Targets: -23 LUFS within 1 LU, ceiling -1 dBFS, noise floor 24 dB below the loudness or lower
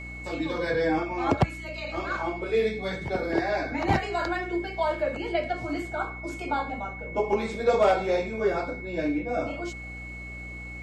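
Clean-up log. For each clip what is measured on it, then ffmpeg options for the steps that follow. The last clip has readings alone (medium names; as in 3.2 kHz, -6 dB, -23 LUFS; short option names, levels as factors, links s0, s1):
hum 60 Hz; highest harmonic 300 Hz; hum level -39 dBFS; steady tone 2.2 kHz; tone level -39 dBFS; loudness -28.5 LUFS; peak level -11.5 dBFS; loudness target -23.0 LUFS
-> -af "bandreject=f=60:t=h:w=4,bandreject=f=120:t=h:w=4,bandreject=f=180:t=h:w=4,bandreject=f=240:t=h:w=4,bandreject=f=300:t=h:w=4"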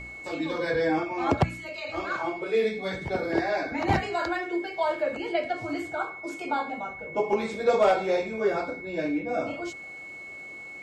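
hum not found; steady tone 2.2 kHz; tone level -39 dBFS
-> -af "bandreject=f=2200:w=30"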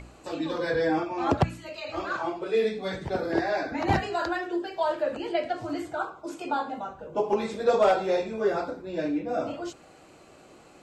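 steady tone not found; loudness -28.5 LUFS; peak level -12.0 dBFS; loudness target -23.0 LUFS
-> -af "volume=1.88"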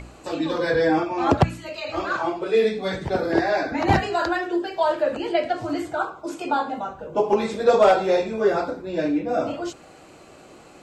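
loudness -23.0 LUFS; peak level -6.5 dBFS; noise floor -47 dBFS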